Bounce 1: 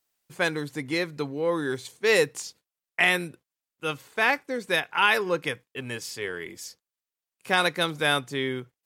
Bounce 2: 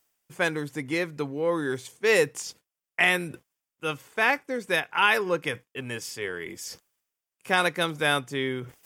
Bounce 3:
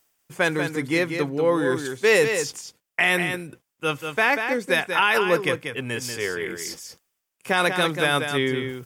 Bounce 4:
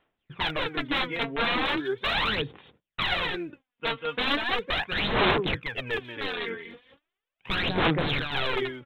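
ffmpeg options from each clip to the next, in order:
-af "equalizer=f=4.1k:w=5.6:g=-8,areverse,acompressor=mode=upward:threshold=-33dB:ratio=2.5,areverse"
-filter_complex "[0:a]alimiter=limit=-13dB:level=0:latency=1:release=39,asplit=2[a][b];[b]aecho=0:1:189:0.447[c];[a][c]amix=inputs=2:normalize=0,volume=5dB"
-af "aresample=8000,aeval=exprs='(mod(8.91*val(0)+1,2)-1)/8.91':c=same,aresample=44100,aphaser=in_gain=1:out_gain=1:delay=4.4:decay=0.69:speed=0.38:type=sinusoidal,volume=-5dB"

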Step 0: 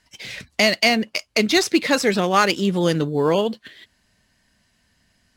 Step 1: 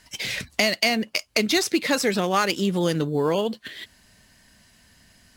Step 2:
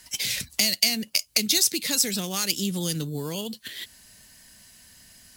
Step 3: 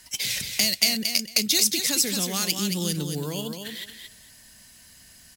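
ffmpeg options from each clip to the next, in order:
-af "acompressor=threshold=-35dB:ratio=2,highshelf=f=9.2k:g=8,volume=7dB"
-filter_complex "[0:a]acrossover=split=240|3000[a][b][c];[b]acompressor=threshold=-40dB:ratio=2.5[d];[a][d][c]amix=inputs=3:normalize=0,crystalizer=i=2.5:c=0,volume=-2dB"
-af "aecho=1:1:225|450|675:0.473|0.0804|0.0137"

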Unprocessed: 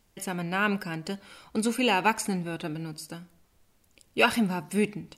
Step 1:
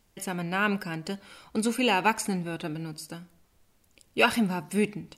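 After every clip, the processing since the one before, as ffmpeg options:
-af anull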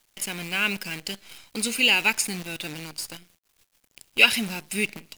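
-af "highshelf=f=1.7k:t=q:w=1.5:g=12,acrusher=bits=6:dc=4:mix=0:aa=0.000001,volume=-4.5dB"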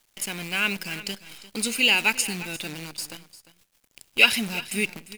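-af "aecho=1:1:350:0.158"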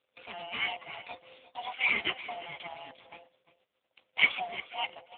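-af "afftfilt=real='real(if(lt(b,1008),b+24*(1-2*mod(floor(b/24),2)),b),0)':imag='imag(if(lt(b,1008),b+24*(1-2*mod(floor(b/24),2)),b),0)':win_size=2048:overlap=0.75,volume=-4.5dB" -ar 8000 -c:a libopencore_amrnb -b:a 5900

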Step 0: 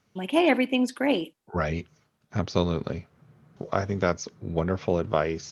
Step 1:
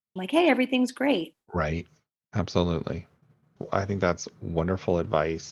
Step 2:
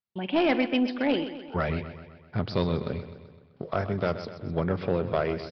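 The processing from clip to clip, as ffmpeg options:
-af "agate=range=-33dB:threshold=-48dB:ratio=3:detection=peak"
-af "aresample=11025,asoftclip=type=tanh:threshold=-16dB,aresample=44100,aecho=1:1:128|256|384|512|640|768:0.251|0.141|0.0788|0.0441|0.0247|0.0138"

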